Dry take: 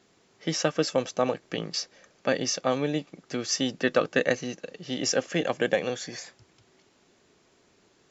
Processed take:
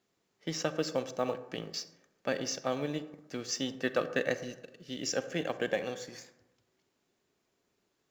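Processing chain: G.711 law mismatch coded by A; 4.39–5.13 bell 890 Hz -13 dB 0.74 oct; on a send: reverb RT60 1.0 s, pre-delay 32 ms, DRR 12 dB; on the sum: gain -6.5 dB

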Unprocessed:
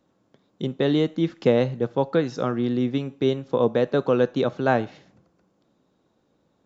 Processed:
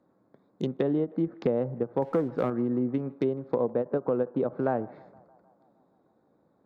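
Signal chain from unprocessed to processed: Wiener smoothing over 15 samples; HPF 150 Hz 6 dB/oct; treble ducked by the level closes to 980 Hz, closed at -20 dBFS; 2.02–2.5 sample leveller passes 1; compressor 3:1, threshold -26 dBFS, peak gain reduction 9.5 dB; on a send: narrowing echo 0.155 s, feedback 73%, band-pass 900 Hz, level -22 dB; on the sum: ending taper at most 430 dB/s; gain +1.5 dB

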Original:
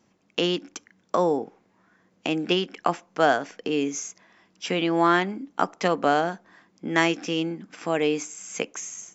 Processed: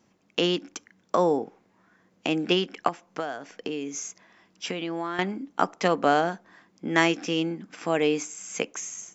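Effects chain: 2.88–5.19 compressor 10:1, threshold -28 dBFS, peak gain reduction 14.5 dB

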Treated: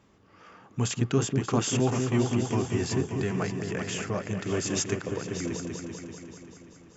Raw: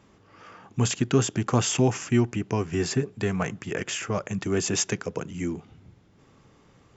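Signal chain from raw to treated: repeats that get brighter 0.194 s, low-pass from 400 Hz, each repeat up 2 oct, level -3 dB; gain -4 dB

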